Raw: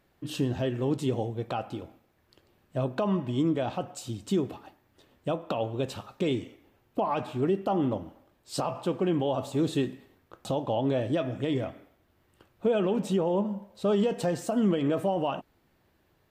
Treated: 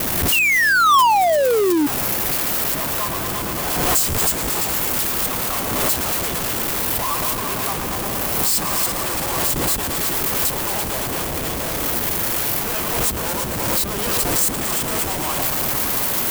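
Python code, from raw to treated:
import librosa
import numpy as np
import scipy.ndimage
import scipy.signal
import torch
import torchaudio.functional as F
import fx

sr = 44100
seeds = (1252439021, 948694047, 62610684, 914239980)

p1 = x + 0.5 * 10.0 ** (-26.5 / 20.0) * np.diff(np.sign(x), prepend=np.sign(x[:1]))
p2 = np.diff(p1, prepend=0.0)
p3 = fx.echo_heads(p2, sr, ms=113, heads='all three', feedback_pct=71, wet_db=-11)
p4 = fx.transient(p3, sr, attack_db=9, sustain_db=-10)
p5 = fx.spec_paint(p4, sr, seeds[0], shape='fall', start_s=0.32, length_s=1.55, low_hz=280.0, high_hz=2900.0, level_db=-25.0)
p6 = fx.peak_eq(p5, sr, hz=1100.0, db=14.0, octaves=0.46)
p7 = fx.notch(p6, sr, hz=3800.0, q=11.0)
p8 = fx.schmitt(p7, sr, flips_db=-33.5)
p9 = p7 + (p8 * 10.0 ** (-5.0 / 20.0))
p10 = fx.leveller(p9, sr, passes=3)
p11 = fx.dmg_buzz(p10, sr, base_hz=60.0, harmonics=6, level_db=-37.0, tilt_db=0, odd_only=False)
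p12 = fx.pre_swell(p11, sr, db_per_s=27.0)
y = p12 * 10.0 ** (-4.5 / 20.0)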